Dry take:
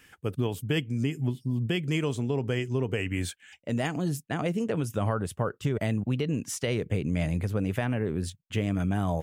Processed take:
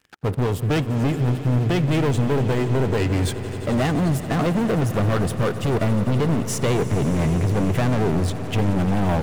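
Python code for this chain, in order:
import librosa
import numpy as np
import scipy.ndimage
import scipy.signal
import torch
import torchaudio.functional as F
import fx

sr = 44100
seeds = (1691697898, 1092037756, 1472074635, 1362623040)

p1 = fx.high_shelf(x, sr, hz=2200.0, db=-10.0)
p2 = fx.leveller(p1, sr, passes=5)
p3 = p2 + fx.echo_swell(p2, sr, ms=87, loudest=5, wet_db=-17.5, dry=0)
y = p3 * librosa.db_to_amplitude(-2.5)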